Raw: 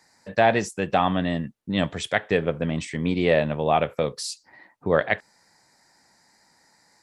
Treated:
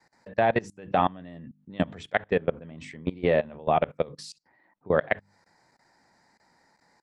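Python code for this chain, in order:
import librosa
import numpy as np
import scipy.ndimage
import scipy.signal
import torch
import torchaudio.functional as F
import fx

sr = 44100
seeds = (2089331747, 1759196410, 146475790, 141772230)

y = fx.lowpass(x, sr, hz=1800.0, slope=6)
y = fx.hum_notches(y, sr, base_hz=50, count=6)
y = fx.level_steps(y, sr, step_db=22)
y = F.gain(torch.from_numpy(y), 1.5).numpy()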